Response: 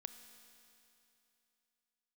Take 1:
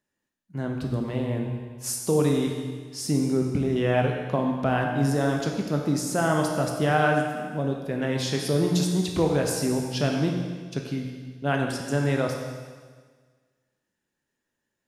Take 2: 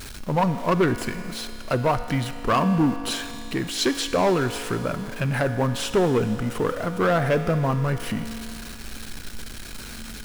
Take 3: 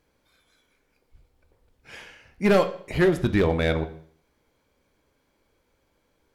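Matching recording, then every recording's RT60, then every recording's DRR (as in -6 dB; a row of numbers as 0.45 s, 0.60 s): 2; 1.6 s, 2.9 s, 0.55 s; 1.5 dB, 9.0 dB, 9.0 dB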